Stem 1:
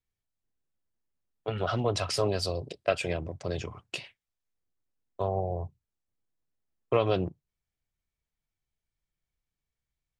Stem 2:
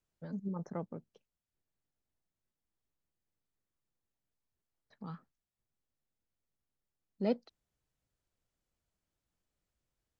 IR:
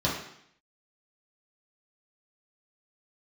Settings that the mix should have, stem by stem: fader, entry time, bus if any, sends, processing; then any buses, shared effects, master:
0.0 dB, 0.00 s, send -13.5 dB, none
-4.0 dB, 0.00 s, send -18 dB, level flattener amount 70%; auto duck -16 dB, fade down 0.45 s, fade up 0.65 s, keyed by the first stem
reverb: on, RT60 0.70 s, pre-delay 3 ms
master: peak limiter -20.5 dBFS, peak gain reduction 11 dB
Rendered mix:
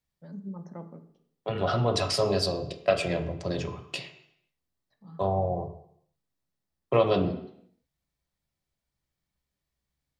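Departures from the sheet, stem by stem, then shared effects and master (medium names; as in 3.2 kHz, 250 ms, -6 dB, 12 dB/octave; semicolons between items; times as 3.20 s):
stem 2: missing level flattener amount 70%; master: missing peak limiter -20.5 dBFS, peak gain reduction 11 dB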